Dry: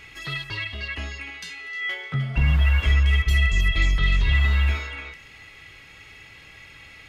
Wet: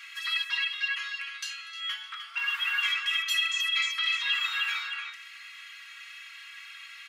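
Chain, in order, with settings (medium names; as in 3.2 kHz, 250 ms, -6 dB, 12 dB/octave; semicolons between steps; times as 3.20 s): steep high-pass 1.1 kHz 48 dB/octave; comb 4.3 ms, depth 92%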